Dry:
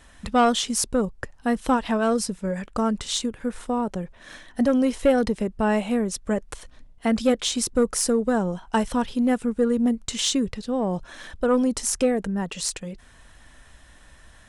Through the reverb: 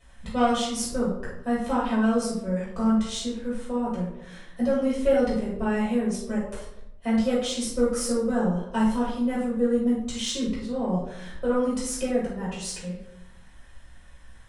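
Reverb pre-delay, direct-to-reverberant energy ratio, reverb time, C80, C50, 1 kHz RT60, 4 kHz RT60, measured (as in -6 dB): 6 ms, -7.5 dB, 0.85 s, 6.5 dB, 2.0 dB, 0.75 s, 0.45 s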